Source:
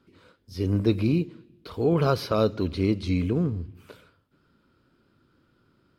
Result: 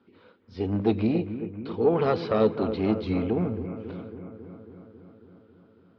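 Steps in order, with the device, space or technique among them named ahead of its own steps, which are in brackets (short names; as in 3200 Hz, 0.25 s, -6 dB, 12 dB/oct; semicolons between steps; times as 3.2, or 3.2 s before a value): analogue delay pedal into a guitar amplifier (analogue delay 0.273 s, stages 4096, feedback 70%, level -12 dB; tube stage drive 14 dB, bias 0.4; speaker cabinet 99–3900 Hz, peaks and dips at 150 Hz -7 dB, 220 Hz +6 dB, 450 Hz +6 dB, 810 Hz +7 dB)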